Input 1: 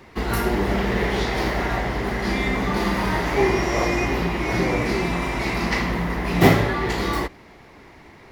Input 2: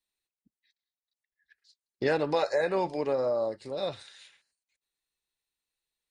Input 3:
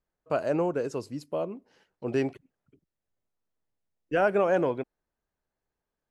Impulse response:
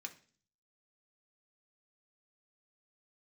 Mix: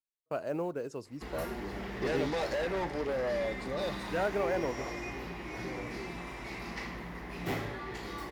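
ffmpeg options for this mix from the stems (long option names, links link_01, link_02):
-filter_complex "[0:a]asoftclip=type=tanh:threshold=-10dB,adelay=1050,volume=-18.5dB,asplit=2[link_01][link_02];[link_02]volume=-3.5dB[link_03];[1:a]asoftclip=type=tanh:threshold=-29.5dB,volume=0dB[link_04];[2:a]acontrast=81,acrusher=bits=9:mode=log:mix=0:aa=0.000001,volume=-14.5dB[link_05];[3:a]atrim=start_sample=2205[link_06];[link_03][link_06]afir=irnorm=-1:irlink=0[link_07];[link_01][link_04][link_05][link_07]amix=inputs=4:normalize=0,agate=range=-21dB:threshold=-53dB:ratio=16:detection=peak"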